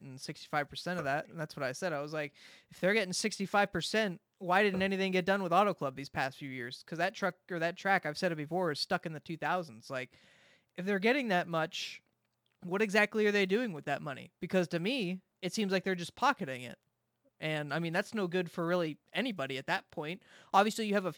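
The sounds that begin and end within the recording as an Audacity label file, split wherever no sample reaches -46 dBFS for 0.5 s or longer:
10.780000	11.970000	sound
12.630000	16.740000	sound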